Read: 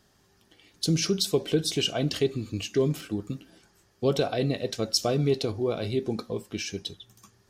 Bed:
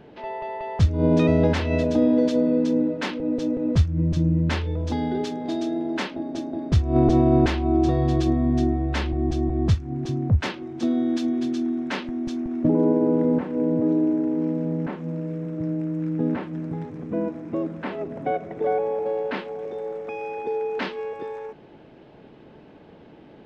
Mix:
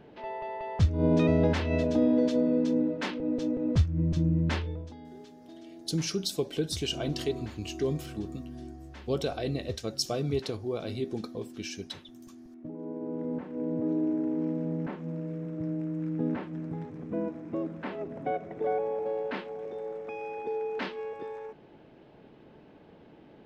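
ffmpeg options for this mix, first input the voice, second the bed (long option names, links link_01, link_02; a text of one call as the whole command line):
ffmpeg -i stem1.wav -i stem2.wav -filter_complex "[0:a]adelay=5050,volume=-5.5dB[link_01];[1:a]volume=10.5dB,afade=type=out:start_time=4.57:duration=0.36:silence=0.149624,afade=type=in:start_time=12.78:duration=1.49:silence=0.16788[link_02];[link_01][link_02]amix=inputs=2:normalize=0" out.wav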